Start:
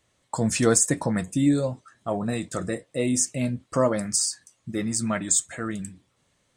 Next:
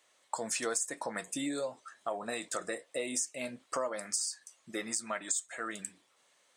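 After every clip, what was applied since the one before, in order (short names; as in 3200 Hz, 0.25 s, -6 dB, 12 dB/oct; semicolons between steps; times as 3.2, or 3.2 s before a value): HPF 560 Hz 12 dB/oct; compressor 4:1, threshold -35 dBFS, peak gain reduction 16 dB; gain +2 dB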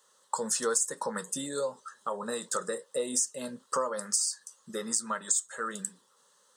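fixed phaser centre 460 Hz, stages 8; gain +6.5 dB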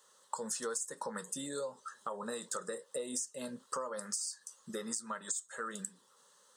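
compressor 2.5:1, threshold -39 dBFS, peak gain reduction 11.5 dB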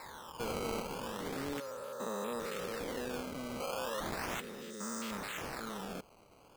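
stepped spectrum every 0.4 s; decimation with a swept rate 14×, swing 160% 0.36 Hz; gain +6.5 dB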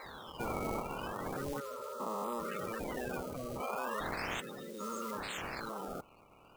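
bin magnitudes rounded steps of 30 dB; gain +1 dB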